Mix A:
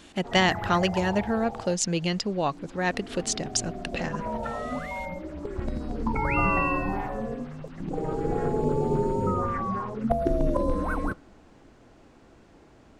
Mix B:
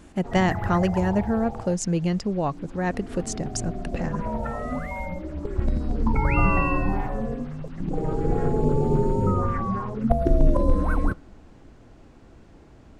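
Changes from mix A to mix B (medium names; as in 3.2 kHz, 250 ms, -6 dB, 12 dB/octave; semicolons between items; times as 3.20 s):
speech: add peaking EQ 3.6 kHz -12 dB 1.4 oct; master: add bass shelf 170 Hz +10 dB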